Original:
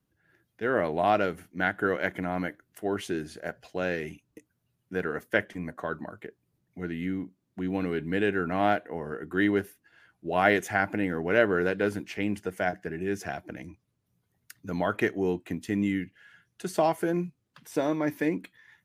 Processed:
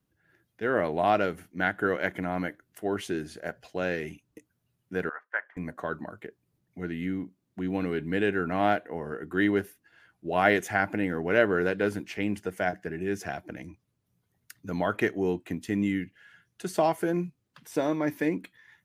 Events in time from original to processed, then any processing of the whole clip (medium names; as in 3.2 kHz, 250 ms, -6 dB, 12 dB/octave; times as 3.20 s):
5.09–5.57 s: Butterworth band-pass 1.2 kHz, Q 1.4